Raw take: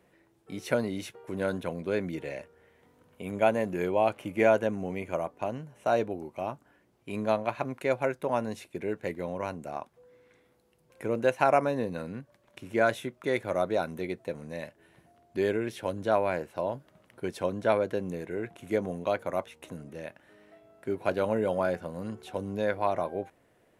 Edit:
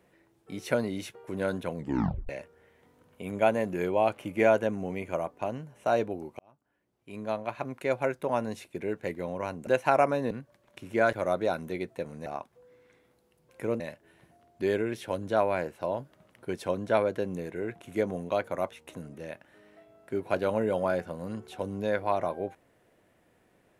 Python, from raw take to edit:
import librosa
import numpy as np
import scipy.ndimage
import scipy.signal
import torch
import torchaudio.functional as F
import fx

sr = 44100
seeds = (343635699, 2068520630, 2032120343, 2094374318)

y = fx.edit(x, sr, fx.tape_stop(start_s=1.76, length_s=0.53),
    fx.fade_in_span(start_s=6.39, length_s=1.67),
    fx.move(start_s=9.67, length_s=1.54, to_s=14.55),
    fx.cut(start_s=11.85, length_s=0.26),
    fx.cut(start_s=12.93, length_s=0.49), tone=tone)